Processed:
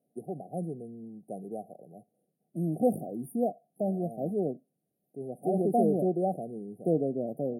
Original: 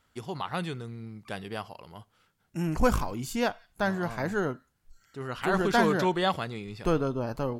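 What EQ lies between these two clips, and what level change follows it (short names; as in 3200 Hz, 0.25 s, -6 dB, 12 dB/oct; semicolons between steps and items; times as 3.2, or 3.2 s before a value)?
steep high-pass 150 Hz 36 dB/oct; brick-wall FIR band-stop 780–8800 Hz; high shelf 11000 Hz -10.5 dB; 0.0 dB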